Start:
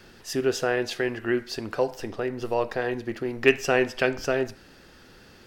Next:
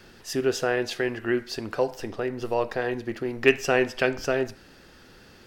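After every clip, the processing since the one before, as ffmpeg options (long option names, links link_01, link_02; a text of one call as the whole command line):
ffmpeg -i in.wav -af anull out.wav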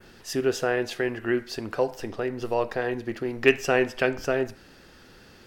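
ffmpeg -i in.wav -af "adynamicequalizer=threshold=0.00562:dfrequency=4700:dqfactor=0.98:tfrequency=4700:tqfactor=0.98:attack=5:release=100:ratio=0.375:range=2.5:mode=cutabove:tftype=bell" out.wav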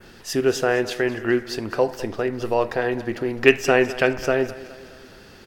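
ffmpeg -i in.wav -af "aecho=1:1:208|416|624|832|1040:0.141|0.0749|0.0397|0.021|0.0111,volume=4.5dB" out.wav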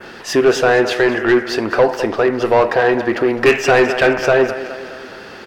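ffmpeg -i in.wav -filter_complex "[0:a]asplit=2[link_01][link_02];[link_02]highpass=frequency=720:poles=1,volume=24dB,asoftclip=type=tanh:threshold=-1dB[link_03];[link_01][link_03]amix=inputs=2:normalize=0,lowpass=frequency=1500:poles=1,volume=-6dB" out.wav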